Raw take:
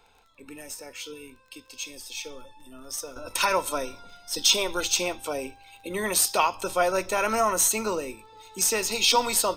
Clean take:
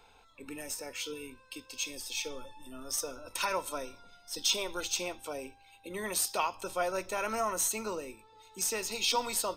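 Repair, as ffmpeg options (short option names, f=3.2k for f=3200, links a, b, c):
-af "adeclick=t=4,asetnsamples=n=441:p=0,asendcmd='3.16 volume volume -8.5dB',volume=0dB"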